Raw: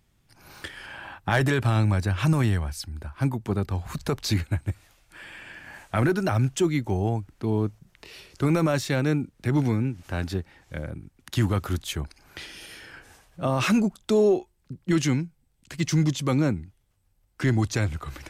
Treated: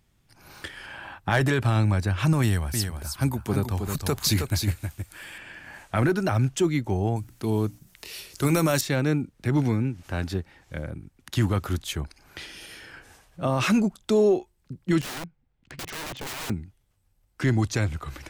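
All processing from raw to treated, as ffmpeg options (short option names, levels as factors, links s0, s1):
-filter_complex "[0:a]asettb=1/sr,asplit=3[s0][s1][s2];[s0]atrim=end=2.424[s3];[s1]atrim=start=2.42:end=5.38,asetpts=PTS-STARTPTS,afade=t=in:d=0.004:c=qsin,afade=t=out:st=2.956:d=0.004:c=qsin,aemphasis=mode=production:type=50kf,aecho=1:1:317:0.501,atrim=end_sample=130536[s4];[s2]atrim=start=5.376[s5];[s3][s4]acrossfade=d=0.004:c1=hsin:c2=qsin[s6];[s6][s5]acrossfade=d=0.004:c1=qsin:c2=hsin,asettb=1/sr,asplit=3[s7][s8][s9];[s7]atrim=end=7.164[s10];[s8]atrim=start=7.16:end=8.81,asetpts=PTS-STARTPTS,afade=t=in:d=0.004:c=qsin,afade=t=out:st=1.646:d=0.004:c=qsin,aemphasis=mode=production:type=75kf,bandreject=f=60:t=h:w=6,bandreject=f=120:t=h:w=6,bandreject=f=180:t=h:w=6,bandreject=f=240:t=h:w=6,bandreject=f=300:t=h:w=6[s11];[s9]atrim=start=8.806[s12];[s10][s11]acrossfade=d=0.004:c1=hsin:c2=qsin[s13];[s13][s12]acrossfade=d=0.004:c1=qsin:c2=hsin,asettb=1/sr,asplit=3[s14][s15][s16];[s14]atrim=end=15.014[s17];[s15]atrim=start=15.01:end=16.5,asetpts=PTS-STARTPTS,afade=t=in:d=0.004:c=qsin,afade=t=out:st=1.486:d=0.004:c=qsin,lowpass=2400,lowshelf=f=450:g=-2.5,aeval=exprs='(mod(31.6*val(0)+1,2)-1)/31.6':c=same[s18];[s16]atrim=start=16.496[s19];[s17][s18]acrossfade=d=0.004:c1=hsin:c2=qsin[s20];[s20][s19]acrossfade=d=0.004:c1=qsin:c2=hsin"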